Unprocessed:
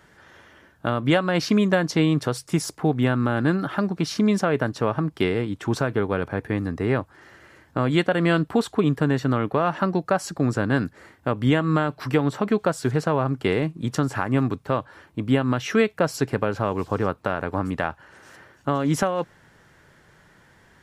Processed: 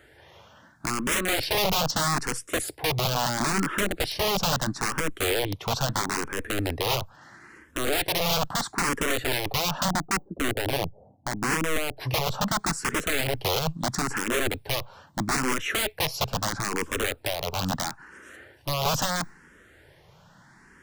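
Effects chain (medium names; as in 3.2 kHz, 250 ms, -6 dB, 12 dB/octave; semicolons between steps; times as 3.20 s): 9.88–11.97 s: Chebyshev low-pass 760 Hz, order 5; integer overflow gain 19.5 dB; barber-pole phaser +0.76 Hz; trim +3 dB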